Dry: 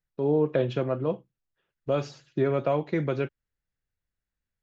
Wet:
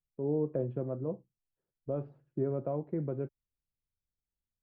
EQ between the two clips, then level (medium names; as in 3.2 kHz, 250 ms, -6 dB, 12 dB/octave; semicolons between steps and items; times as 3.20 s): Bessel low-pass 530 Hz, order 2; distance through air 180 m; -5.5 dB